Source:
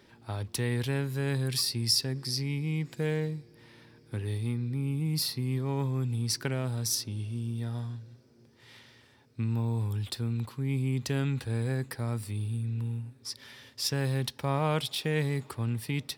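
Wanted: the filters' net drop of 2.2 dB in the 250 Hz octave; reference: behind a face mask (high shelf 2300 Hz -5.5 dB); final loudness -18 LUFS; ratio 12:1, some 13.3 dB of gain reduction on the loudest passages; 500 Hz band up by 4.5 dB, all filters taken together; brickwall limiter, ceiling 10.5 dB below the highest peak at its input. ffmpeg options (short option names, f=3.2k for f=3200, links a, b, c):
-af "equalizer=f=250:t=o:g=-5,equalizer=f=500:t=o:g=7,acompressor=threshold=-34dB:ratio=12,alimiter=level_in=6.5dB:limit=-24dB:level=0:latency=1,volume=-6.5dB,highshelf=f=2.3k:g=-5.5,volume=22.5dB"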